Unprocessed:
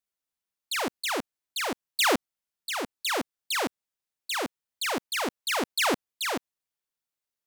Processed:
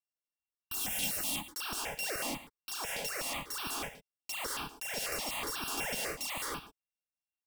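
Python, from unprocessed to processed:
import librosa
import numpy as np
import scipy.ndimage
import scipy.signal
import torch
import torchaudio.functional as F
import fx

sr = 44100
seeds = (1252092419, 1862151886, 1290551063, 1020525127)

p1 = np.r_[np.sort(x[:len(x) // 16 * 16].reshape(-1, 16), axis=1).ravel(), x[len(x) // 16 * 16:]]
p2 = fx.spec_repair(p1, sr, seeds[0], start_s=0.74, length_s=0.72, low_hz=270.0, high_hz=2800.0, source='after')
p3 = fx.leveller(p2, sr, passes=5)
p4 = fx.level_steps(p3, sr, step_db=16)
p5 = p3 + (p4 * librosa.db_to_amplitude(-1.0))
p6 = 10.0 ** (-24.0 / 20.0) * (np.abs((p5 / 10.0 ** (-24.0 / 20.0) + 3.0) % 4.0 - 2.0) - 1.0)
p7 = p6 + fx.echo_single(p6, sr, ms=114, db=-14.0, dry=0)
p8 = fx.rev_gated(p7, sr, seeds[1], gate_ms=230, shape='rising', drr_db=-2.5)
p9 = fx.phaser_held(p8, sr, hz=8.1, low_hz=320.0, high_hz=2000.0)
y = p9 * librosa.db_to_amplitude(-4.0)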